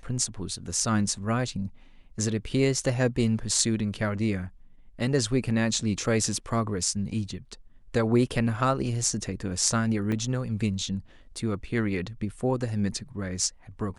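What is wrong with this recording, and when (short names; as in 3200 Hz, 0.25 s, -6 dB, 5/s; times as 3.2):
10.12 gap 2.2 ms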